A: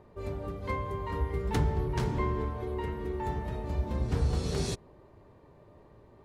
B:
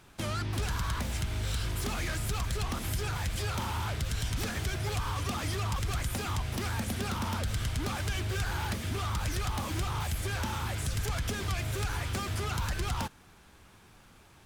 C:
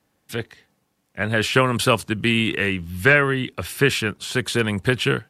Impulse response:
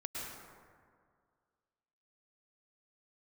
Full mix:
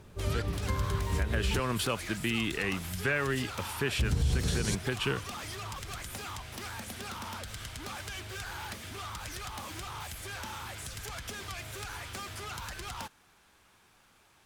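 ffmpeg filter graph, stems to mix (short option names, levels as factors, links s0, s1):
-filter_complex "[0:a]bass=f=250:g=10,treble=f=4000:g=14,volume=0.668,asplit=3[s0][s1][s2];[s0]atrim=end=1.6,asetpts=PTS-STARTPTS,afade=t=out:st=1.596:d=0.004:c=hsin[s3];[s1]atrim=start=1.6:end=3.99,asetpts=PTS-STARTPTS,volume=0[s4];[s2]atrim=start=3.99,asetpts=PTS-STARTPTS,afade=t=in:d=0.004:c=hsin[s5];[s3][s4][s5]concat=n=3:v=0:a=1[s6];[1:a]lowshelf=f=360:g=-10.5,acontrast=88,volume=0.299[s7];[2:a]volume=0.355[s8];[s6][s7][s8]amix=inputs=3:normalize=0,alimiter=limit=0.106:level=0:latency=1:release=124"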